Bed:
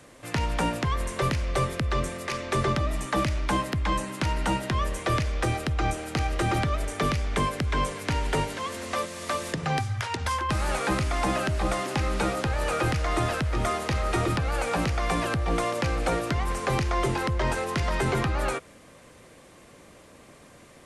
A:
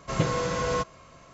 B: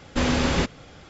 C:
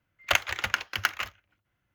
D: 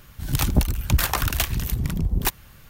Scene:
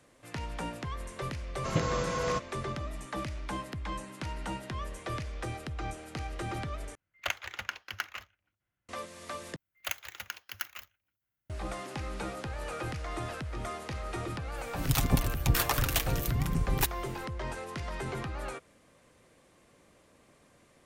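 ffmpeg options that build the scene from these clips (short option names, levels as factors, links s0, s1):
-filter_complex "[3:a]asplit=2[s0][s1];[0:a]volume=0.282[s2];[s1]aemphasis=mode=production:type=50fm[s3];[4:a]aecho=1:1:7.3:0.45[s4];[s2]asplit=3[s5][s6][s7];[s5]atrim=end=6.954[s8];[s0]atrim=end=1.94,asetpts=PTS-STARTPTS,volume=0.335[s9];[s6]atrim=start=8.886:end=9.564[s10];[s3]atrim=end=1.94,asetpts=PTS-STARTPTS,volume=0.178[s11];[s7]atrim=start=11.496[s12];[1:a]atrim=end=1.33,asetpts=PTS-STARTPTS,volume=0.631,afade=t=in:d=0.004:c=hsin,afade=t=out:st=1.326:d=0.004:c=hsin,adelay=1560[s13];[s4]atrim=end=2.69,asetpts=PTS-STARTPTS,volume=0.501,afade=t=in:d=0.004:c=hsin,afade=t=out:st=2.686:d=0.004:c=hsin,adelay=14560[s14];[s8][s9]acrossfade=d=0.004:c1=hsin:c2=hsin[s15];[s15][s10]acrossfade=d=0.004:c1=hsin:c2=hsin[s16];[s16][s11]acrossfade=d=0.004:c1=hsin:c2=hsin[s17];[s17][s12]acrossfade=d=0.004:c1=hsin:c2=hsin[s18];[s18][s13][s14]amix=inputs=3:normalize=0"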